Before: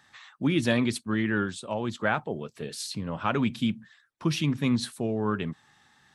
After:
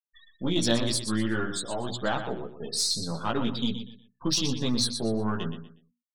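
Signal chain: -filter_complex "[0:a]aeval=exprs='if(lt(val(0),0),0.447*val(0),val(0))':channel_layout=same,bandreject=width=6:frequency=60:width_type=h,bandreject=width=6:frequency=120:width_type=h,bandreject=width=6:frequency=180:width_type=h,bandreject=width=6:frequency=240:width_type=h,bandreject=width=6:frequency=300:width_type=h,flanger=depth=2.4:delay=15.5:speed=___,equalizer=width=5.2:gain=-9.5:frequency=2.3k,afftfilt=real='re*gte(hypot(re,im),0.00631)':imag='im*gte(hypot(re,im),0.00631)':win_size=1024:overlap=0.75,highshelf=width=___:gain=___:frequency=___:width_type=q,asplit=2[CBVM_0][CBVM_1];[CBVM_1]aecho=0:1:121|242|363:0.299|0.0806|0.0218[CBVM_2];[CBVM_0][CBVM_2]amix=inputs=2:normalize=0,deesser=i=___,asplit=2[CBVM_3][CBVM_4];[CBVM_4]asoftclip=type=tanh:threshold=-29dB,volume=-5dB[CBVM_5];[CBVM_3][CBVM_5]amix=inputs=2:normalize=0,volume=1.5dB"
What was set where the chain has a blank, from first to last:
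0.49, 1.5, 11, 3.3k, 0.5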